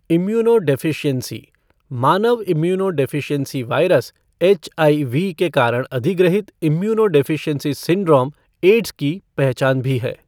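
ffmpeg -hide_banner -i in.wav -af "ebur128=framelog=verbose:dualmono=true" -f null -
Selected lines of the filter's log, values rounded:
Integrated loudness:
  I:         -14.8 LUFS
  Threshold: -25.1 LUFS
Loudness range:
  LRA:         1.9 LU
  Threshold: -35.1 LUFS
  LRA low:   -16.3 LUFS
  LRA high:  -14.3 LUFS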